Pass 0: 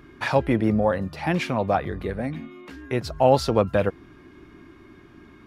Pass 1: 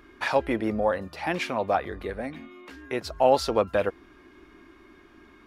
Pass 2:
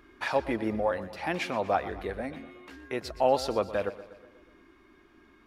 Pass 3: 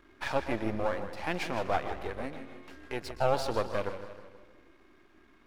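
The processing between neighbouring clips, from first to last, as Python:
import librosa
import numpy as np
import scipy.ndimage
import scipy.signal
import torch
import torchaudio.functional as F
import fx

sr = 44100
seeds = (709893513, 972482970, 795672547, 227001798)

y1 = fx.peak_eq(x, sr, hz=130.0, db=-14.5, octaves=1.4)
y1 = F.gain(torch.from_numpy(y1), -1.0).numpy()
y2 = fx.rider(y1, sr, range_db=3, speed_s=2.0)
y2 = fx.echo_feedback(y2, sr, ms=121, feedback_pct=57, wet_db=-15.5)
y2 = F.gain(torch.from_numpy(y2), -4.0).numpy()
y3 = np.where(y2 < 0.0, 10.0 ** (-12.0 / 20.0) * y2, y2)
y3 = fx.echo_warbled(y3, sr, ms=157, feedback_pct=48, rate_hz=2.8, cents=105, wet_db=-11.0)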